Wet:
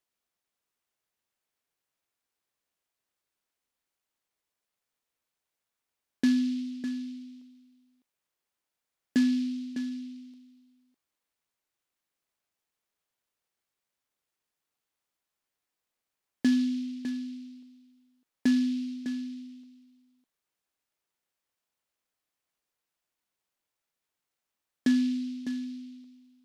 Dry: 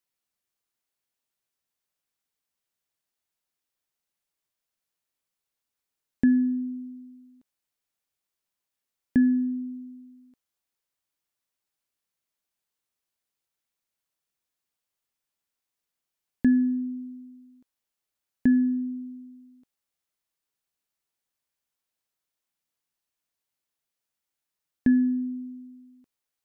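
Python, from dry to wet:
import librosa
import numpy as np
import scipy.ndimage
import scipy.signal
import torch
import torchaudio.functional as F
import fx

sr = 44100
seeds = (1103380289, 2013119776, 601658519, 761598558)

y = scipy.signal.sosfilt(scipy.signal.butter(2, 270.0, 'highpass', fs=sr, output='sos'), x)
y = y + 10.0 ** (-10.5 / 20.0) * np.pad(y, (int(604 * sr / 1000.0), 0))[:len(y)]
y = fx.noise_mod_delay(y, sr, seeds[0], noise_hz=3600.0, depth_ms=0.051)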